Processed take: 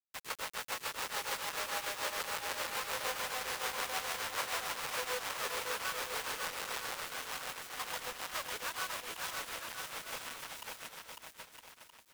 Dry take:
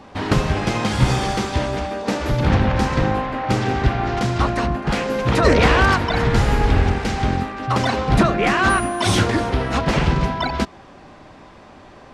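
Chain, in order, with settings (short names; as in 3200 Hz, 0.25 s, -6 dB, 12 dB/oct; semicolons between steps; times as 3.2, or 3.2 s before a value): half-waves squared off; Doppler pass-by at 2.76, 16 m/s, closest 12 m; steep high-pass 480 Hz 48 dB/oct; bell 670 Hz -12 dB 0.53 oct; reverse; compressor 16:1, threshold -31 dBFS, peak gain reduction 14.5 dB; reverse; tremolo 6.8 Hz, depth 100%; bit-crush 7-bit; on a send: bouncing-ball echo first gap 0.55 s, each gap 0.75×, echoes 5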